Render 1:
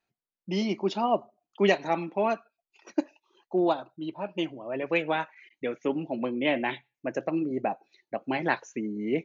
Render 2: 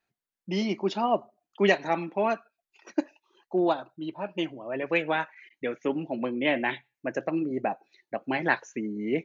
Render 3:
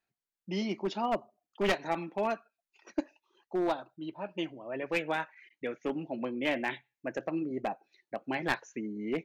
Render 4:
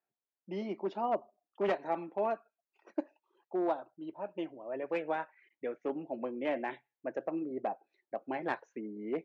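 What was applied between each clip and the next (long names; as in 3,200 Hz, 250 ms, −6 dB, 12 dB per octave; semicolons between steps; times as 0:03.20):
parametric band 1,700 Hz +4.5 dB 0.54 octaves
wavefolder on the positive side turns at −19 dBFS; level −5 dB
resonant band-pass 580 Hz, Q 0.79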